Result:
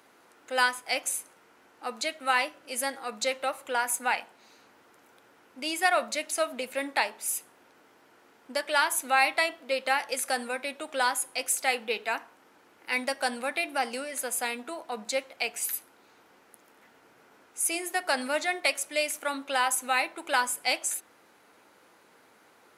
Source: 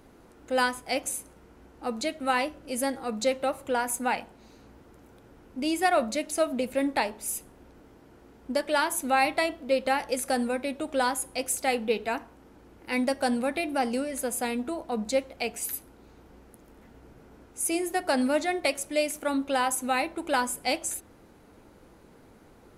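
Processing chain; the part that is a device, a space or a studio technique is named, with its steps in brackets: filter by subtraction (in parallel: low-pass 1.6 kHz 12 dB/octave + polarity flip); on the sum: high-pass 77 Hz 24 dB/octave; trim +1.5 dB

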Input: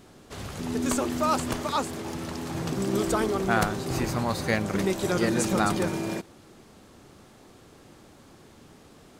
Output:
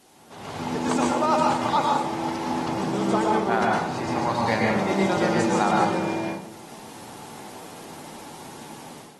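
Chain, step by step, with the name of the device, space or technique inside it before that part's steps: filmed off a television (band-pass 160–6400 Hz; peaking EQ 860 Hz +10.5 dB 0.51 oct; reverberation RT60 0.60 s, pre-delay 105 ms, DRR -2 dB; white noise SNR 27 dB; level rider gain up to 12 dB; trim -8.5 dB; AAC 32 kbps 48 kHz)

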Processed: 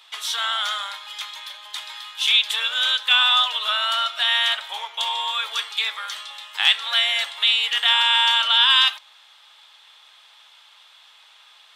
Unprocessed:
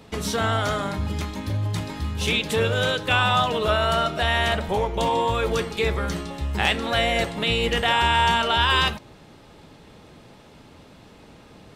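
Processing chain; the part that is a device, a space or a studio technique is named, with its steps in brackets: headphones lying on a table (high-pass 1 kHz 24 dB/octave; peaking EQ 3.4 kHz +12 dB 0.44 oct)

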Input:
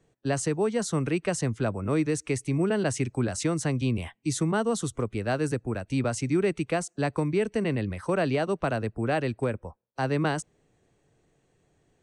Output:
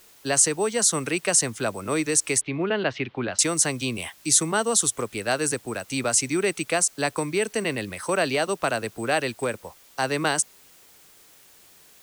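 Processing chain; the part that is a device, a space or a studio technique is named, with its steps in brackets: turntable without a phono preamp (RIAA curve recording; white noise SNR 28 dB); 2.41–3.39 s: steep low-pass 3.7 kHz 36 dB/octave; trim +4.5 dB

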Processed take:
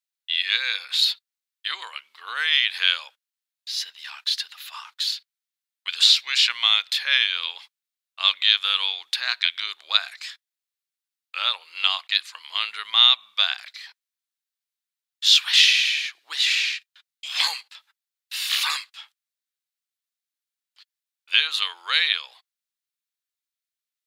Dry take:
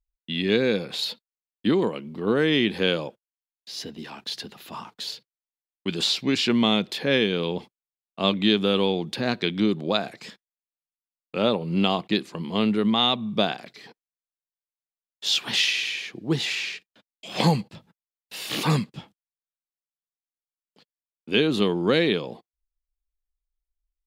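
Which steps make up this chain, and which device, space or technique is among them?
headphones lying on a table (high-pass 1.3 kHz 24 dB/octave; peaking EQ 3.9 kHz +4 dB 0.48 oct); trim +5.5 dB

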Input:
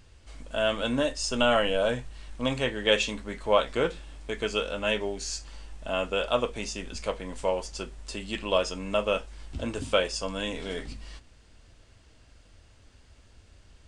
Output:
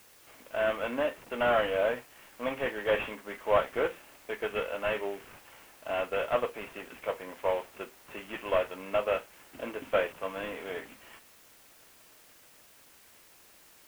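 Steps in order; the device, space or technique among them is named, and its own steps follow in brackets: army field radio (band-pass 390–3300 Hz; CVSD coder 16 kbps; white noise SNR 25 dB)

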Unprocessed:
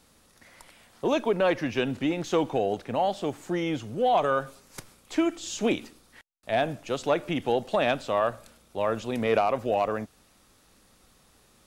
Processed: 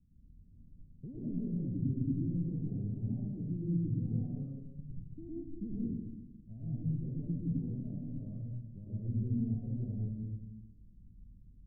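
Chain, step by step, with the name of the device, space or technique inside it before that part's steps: club heard from the street (peak limiter -21 dBFS, peak gain reduction 10 dB; low-pass 180 Hz 24 dB/octave; reverberation RT60 1.0 s, pre-delay 100 ms, DRR -7.5 dB)

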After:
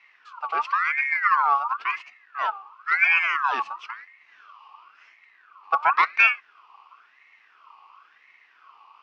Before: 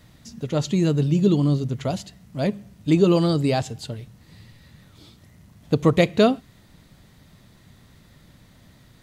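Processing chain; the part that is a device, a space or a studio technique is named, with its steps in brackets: voice changer toy (ring modulator with a swept carrier 1.5 kHz, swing 35%, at 0.96 Hz; cabinet simulation 530–4000 Hz, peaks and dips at 560 Hz -9 dB, 1.1 kHz +9 dB, 1.7 kHz -7 dB, 2.6 kHz +9 dB, 3.7 kHz -6 dB); trim -1.5 dB

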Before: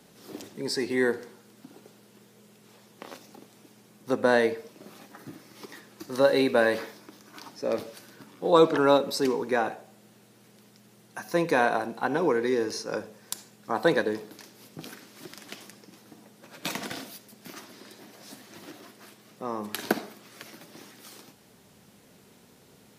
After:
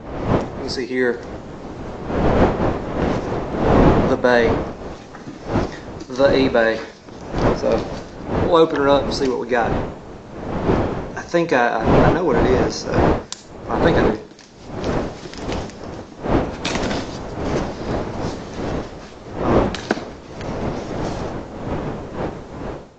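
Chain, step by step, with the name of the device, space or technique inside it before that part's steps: smartphone video outdoors (wind noise 540 Hz -29 dBFS; level rider gain up to 10 dB; AAC 48 kbps 16 kHz)

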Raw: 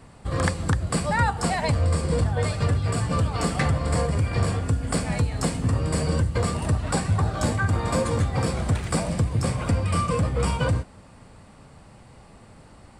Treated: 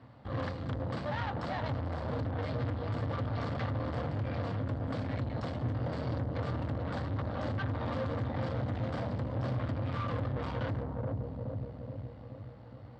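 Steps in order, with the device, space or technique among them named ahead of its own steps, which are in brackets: analogue delay pedal into a guitar amplifier (bucket-brigade echo 422 ms, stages 2048, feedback 57%, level -4 dB; valve stage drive 30 dB, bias 0.75; cabinet simulation 86–3900 Hz, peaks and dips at 120 Hz +9 dB, 170 Hz -7 dB, 270 Hz +6 dB, 390 Hz -6 dB, 560 Hz +4 dB, 2.5 kHz -7 dB); trim -2.5 dB

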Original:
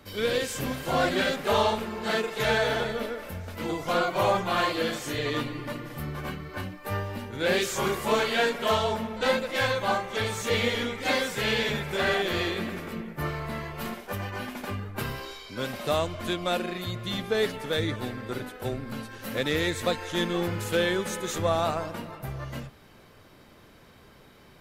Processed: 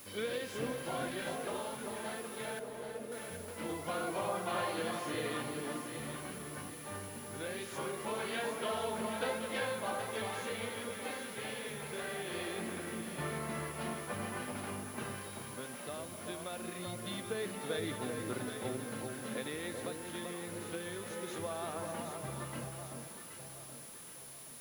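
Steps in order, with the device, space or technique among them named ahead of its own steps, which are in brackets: medium wave at night (band-pass 130–3900 Hz; compression, threshold -28 dBFS, peak gain reduction 9 dB; tremolo 0.22 Hz, depth 54%; whistle 10 kHz -49 dBFS; white noise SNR 14 dB); 2.59–3.12 s: Chebyshev low-pass 510 Hz, order 2; echo whose repeats swap between lows and highs 388 ms, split 1.2 kHz, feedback 65%, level -3.5 dB; trim -5.5 dB

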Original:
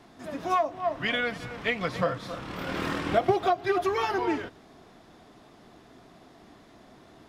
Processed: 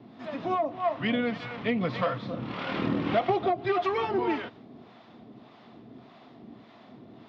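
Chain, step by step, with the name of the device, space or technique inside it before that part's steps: guitar amplifier with harmonic tremolo (harmonic tremolo 1.7 Hz, depth 70%, crossover 580 Hz; saturation -21.5 dBFS, distortion -17 dB; cabinet simulation 110–4100 Hz, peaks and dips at 120 Hz +7 dB, 230 Hz +8 dB, 1.6 kHz -5 dB); trim +4.5 dB

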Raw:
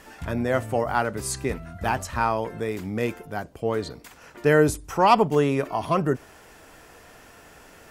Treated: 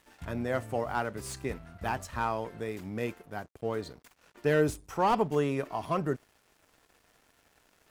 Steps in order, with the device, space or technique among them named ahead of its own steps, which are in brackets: early transistor amplifier (crossover distortion -48 dBFS; slew-rate limiter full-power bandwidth 200 Hz); trim -7 dB

